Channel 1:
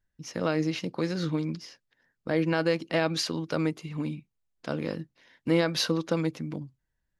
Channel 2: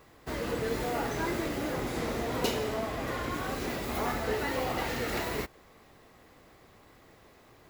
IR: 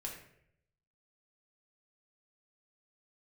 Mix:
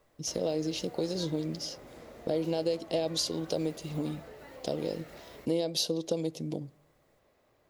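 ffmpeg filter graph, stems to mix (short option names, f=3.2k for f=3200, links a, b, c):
-filter_complex "[0:a]firequalizer=gain_entry='entry(250,0);entry(420,8);entry(710,7);entry(1300,-19);entry(3200,6);entry(7700,11)':delay=0.05:min_phase=1,acompressor=threshold=-33dB:ratio=2.5,volume=0.5dB,asplit=2[a][b];[b]volume=-19dB[c];[1:a]equalizer=f=580:t=o:w=0.39:g=9,acompressor=threshold=-34dB:ratio=3,volume=-13.5dB[d];[2:a]atrim=start_sample=2205[e];[c][e]afir=irnorm=-1:irlink=0[f];[a][d][f]amix=inputs=3:normalize=0"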